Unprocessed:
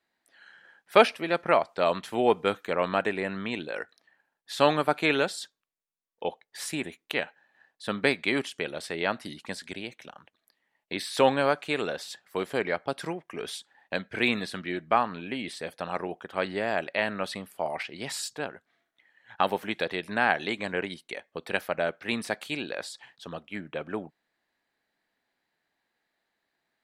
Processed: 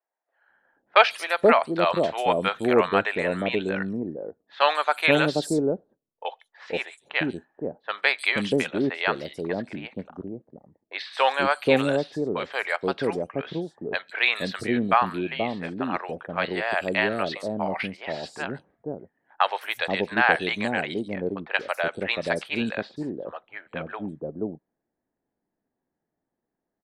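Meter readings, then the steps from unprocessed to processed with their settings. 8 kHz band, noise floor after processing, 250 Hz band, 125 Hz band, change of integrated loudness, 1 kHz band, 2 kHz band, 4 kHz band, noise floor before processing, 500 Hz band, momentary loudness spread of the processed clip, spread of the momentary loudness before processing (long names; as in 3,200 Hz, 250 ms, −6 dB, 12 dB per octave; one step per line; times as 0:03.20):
−4.0 dB, −84 dBFS, +5.0 dB, +5.5 dB, +4.0 dB, +4.0 dB, +5.0 dB, +3.5 dB, −82 dBFS, +3.0 dB, 15 LU, 14 LU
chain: low-pass that shuts in the quiet parts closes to 530 Hz, open at −25 dBFS
three-band delay without the direct sound mids, highs, lows 140/480 ms, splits 600/5,700 Hz
level +5.5 dB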